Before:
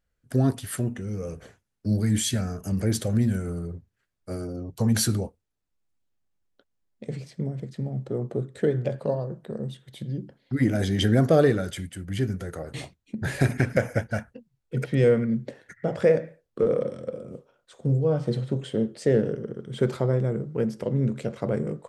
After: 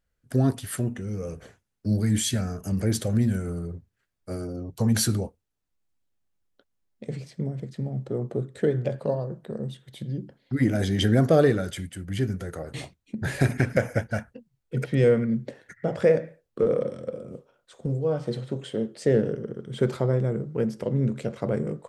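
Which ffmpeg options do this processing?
ffmpeg -i in.wav -filter_complex "[0:a]asettb=1/sr,asplit=3[link_01][link_02][link_03];[link_01]atrim=end=17.864[link_04];[link_02]atrim=start=17.86:end=18.99,asetpts=PTS-STARTPTS,afade=type=in:duration=0.004:curve=qsin,afade=type=out:start_time=1.126:duration=0.004:curve=qsin,lowshelf=frequency=220:gain=-7.5[link_05];[link_03]atrim=start=18.986[link_06];[link_04][link_05]acrossfade=duration=0.004:curve1=hsin:curve2=qsin[link_07];[link_07][link_06]acrossfade=duration=0.004:curve1=qsin:curve2=hsin" out.wav

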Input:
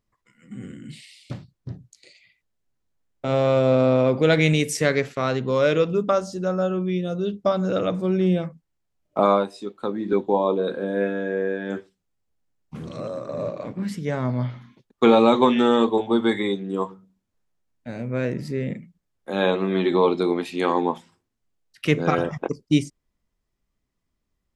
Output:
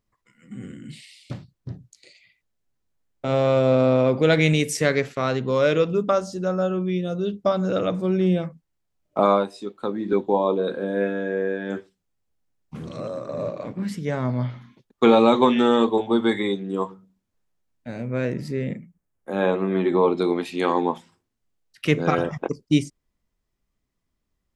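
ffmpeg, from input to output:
ffmpeg -i in.wav -filter_complex "[0:a]asettb=1/sr,asplit=3[link_01][link_02][link_03];[link_01]atrim=end=18.754[link_04];[link_02]atrim=start=18.75:end=20.17,asetpts=PTS-STARTPTS,afade=type=in:duration=0.004:curve=qsin,afade=type=out:start_time=1.416:duration=0.004:curve=qsin,equalizer=frequency=4000:width_type=o:width=1.2:gain=-10.5[link_05];[link_03]atrim=start=20.166[link_06];[link_04][link_05]acrossfade=duration=0.004:curve1=hsin:curve2=qsin[link_07];[link_07][link_06]acrossfade=duration=0.004:curve1=qsin:curve2=hsin" out.wav

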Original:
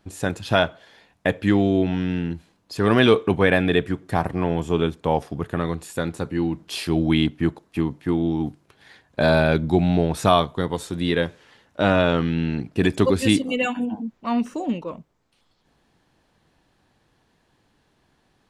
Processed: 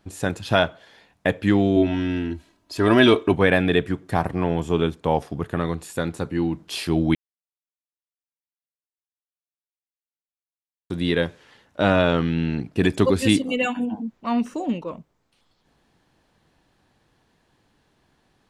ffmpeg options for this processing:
ffmpeg -i in.wav -filter_complex "[0:a]asettb=1/sr,asplit=3[link_01][link_02][link_03];[link_01]atrim=end=1.764[link_04];[link_02]atrim=start=1.76:end=3.33,asetpts=PTS-STARTPTS,afade=type=in:duration=0.004:curve=qsin,afade=type=out:start_time=1.566:duration=0.004:curve=qsin,aecho=1:1:3.1:0.65,atrim=end_sample=69237[link_05];[link_03]atrim=start=3.326[link_06];[link_04][link_05]acrossfade=duration=0.004:curve1=hsin:curve2=qsin[link_07];[link_07][link_06]acrossfade=duration=0.004:curve1=qsin:curve2=hsin,asplit=3[link_08][link_09][link_10];[link_08]atrim=end=7.15,asetpts=PTS-STARTPTS,afade=type=out:start_time=7.146:duration=0.004:curve=hsin[link_11];[link_09]atrim=start=7.15:end=10.9,asetpts=PTS-STARTPTS,volume=0[link_12];[link_10]atrim=start=10.9,asetpts=PTS-STARTPTS,afade=type=in:duration=0.004:curve=hsin[link_13];[link_11][link_12][link_13]concat=n=3:v=0:a=1" out.wav

